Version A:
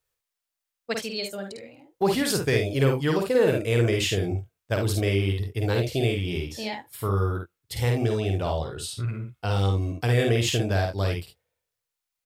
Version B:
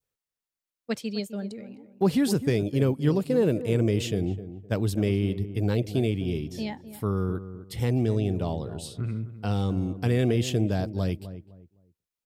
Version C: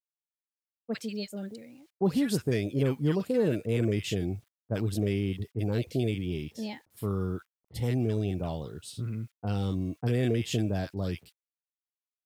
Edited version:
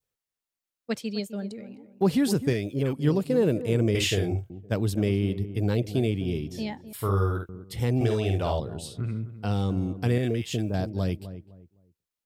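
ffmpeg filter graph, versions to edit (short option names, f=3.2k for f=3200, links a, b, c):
-filter_complex "[2:a]asplit=2[a][b];[0:a]asplit=3[c][d][e];[1:a]asplit=6[f][g][h][i][j][k];[f]atrim=end=2.532[l];[a]atrim=start=2.528:end=2.932[m];[g]atrim=start=2.928:end=3.952[n];[c]atrim=start=3.948:end=4.502[o];[h]atrim=start=4.498:end=6.932[p];[d]atrim=start=6.928:end=7.492[q];[i]atrim=start=7.488:end=8.012[r];[e]atrim=start=8.008:end=8.602[s];[j]atrim=start=8.598:end=10.182[t];[b]atrim=start=10.178:end=10.742[u];[k]atrim=start=10.738[v];[l][m]acrossfade=d=0.004:c1=hsin:c2=hsin[w];[w][n]acrossfade=d=0.004:c1=hsin:c2=hsin[x];[x][o]acrossfade=d=0.004:c1=hsin:c2=hsin[y];[y][p]acrossfade=d=0.004:c1=hsin:c2=hsin[z];[z][q]acrossfade=d=0.004:c1=hsin:c2=hsin[aa];[aa][r]acrossfade=d=0.004:c1=hsin:c2=hsin[ab];[ab][s]acrossfade=d=0.004:c1=hsin:c2=hsin[ac];[ac][t]acrossfade=d=0.004:c1=hsin:c2=hsin[ad];[ad][u]acrossfade=d=0.004:c1=hsin:c2=hsin[ae];[ae][v]acrossfade=d=0.004:c1=hsin:c2=hsin"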